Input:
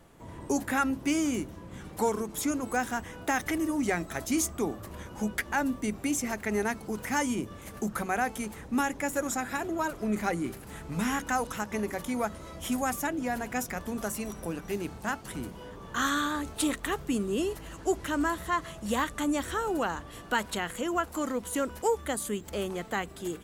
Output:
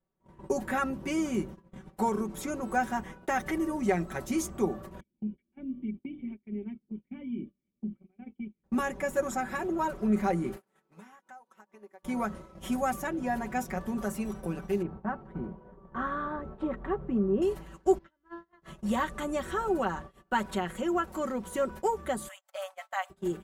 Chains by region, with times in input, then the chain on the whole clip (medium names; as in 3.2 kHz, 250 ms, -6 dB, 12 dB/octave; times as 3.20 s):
5.00–8.64 s: cascade formant filter i + hum notches 50/100/150/200/250/300/350 Hz
10.56–12.03 s: high-pass 320 Hz + dynamic bell 890 Hz, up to +5 dB, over -42 dBFS + compression 20:1, threshold -39 dBFS
14.82–17.42 s: low-pass 1.2 kHz + upward compressor, threshold -38 dBFS
17.98–18.62 s: low-pass 5.1 kHz 24 dB/octave + feedback comb 340 Hz, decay 0.81 s, mix 90%
22.28–23.10 s: brick-wall FIR high-pass 550 Hz + treble shelf 8.2 kHz +4.5 dB
whole clip: gate -41 dBFS, range -29 dB; treble shelf 2.1 kHz -10.5 dB; comb 5.3 ms, depth 73%